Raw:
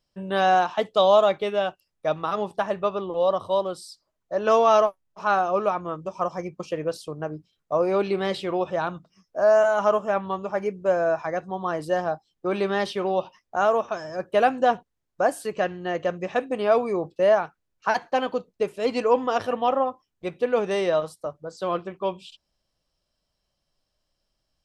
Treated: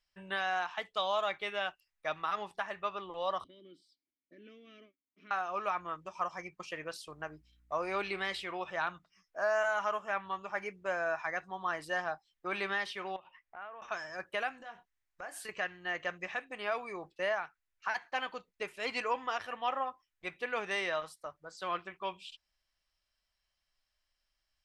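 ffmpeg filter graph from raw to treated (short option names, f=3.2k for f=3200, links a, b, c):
-filter_complex "[0:a]asettb=1/sr,asplit=3[a][b][c];[a]atrim=end=3.444[d];[b]atrim=start=3.44:end=5.31,asetpts=PTS-STARTPTS,afade=t=in:d=0.004:c=qsin,afade=t=out:st=1.866:d=0.004:c=qsin,lowshelf=f=580:t=q:w=1.5:g=12.5,acompressor=threshold=-19dB:ratio=6:attack=3.2:release=140:knee=1:detection=peak,asplit=3[e][f][g];[e]bandpass=f=270:t=q:w=8,volume=0dB[h];[f]bandpass=f=2.29k:t=q:w=8,volume=-6dB[i];[g]bandpass=f=3.01k:t=q:w=8,volume=-9dB[j];[h][i][j]amix=inputs=3:normalize=0[k];[c]atrim=start=5.306[l];[d][k]acrossfade=d=0.004:c1=hsin:c2=qsin[m];[m][l]acrossfade=d=0.004:c1=qsin:c2=hsin,asettb=1/sr,asplit=3[n][o][p];[n]atrim=end=7.104[q];[o]atrim=start=7.1:end=8.44,asetpts=PTS-STARTPTS,afade=t=in:d=0.004:c=qsin,afade=t=out:st=1.336:d=0.004:c=qsin,aeval=exprs='val(0)+0.00158*(sin(2*PI*60*n/s)+sin(2*PI*2*60*n/s)/2+sin(2*PI*3*60*n/s)/3+sin(2*PI*4*60*n/s)/4+sin(2*PI*5*60*n/s)/5)':c=same,highshelf=f=7.8k:g=5.5[r];[p]atrim=start=8.436[s];[q][r]acrossfade=d=0.004:c1=hsin:c2=qsin[t];[t][s]acrossfade=d=0.004:c1=qsin:c2=hsin,asettb=1/sr,asplit=3[u][v][w];[u]atrim=end=13.164[x];[v]atrim=start=13.16:end=13.82,asetpts=PTS-STARTPTS,afade=t=in:d=0.004:c=qsin,afade=t=out:st=0.656:d=0.004:c=qsin,lowpass=f=3k:w=0.5412,lowpass=f=3k:w=1.3066,acompressor=threshold=-40dB:ratio=3:attack=3.2:release=140:knee=1:detection=peak[y];[w]atrim=start=13.816[z];[x][y]acrossfade=d=0.004:c1=hsin:c2=qsin[aa];[aa][z]acrossfade=d=0.004:c1=qsin:c2=hsin,asettb=1/sr,asplit=3[ab][ac][ad];[ab]atrim=end=14.574[ae];[ac]atrim=start=14.57:end=15.49,asetpts=PTS-STARTPTS,afade=t=in:d=0.004:c=qsin,afade=t=out:st=0.916:d=0.004:c=qsin,acompressor=threshold=-30dB:ratio=10:attack=3.2:release=140:knee=1:detection=peak,asplit=2[af][ag];[ag]adelay=26,volume=-10dB[ah];[af][ah]amix=inputs=2:normalize=0,atrim=end_sample=40572[ai];[ad]atrim=start=15.486[aj];[ae][ai]acrossfade=d=0.004:c1=hsin:c2=qsin[ak];[ak][aj]acrossfade=d=0.004:c1=qsin:c2=hsin,equalizer=f=125:t=o:w=1:g=-12,equalizer=f=250:t=o:w=1:g=-8,equalizer=f=500:t=o:w=1:g=-9,equalizer=f=2k:t=o:w=1:g=9,alimiter=limit=-15.5dB:level=0:latency=1:release=499,volume=-6dB"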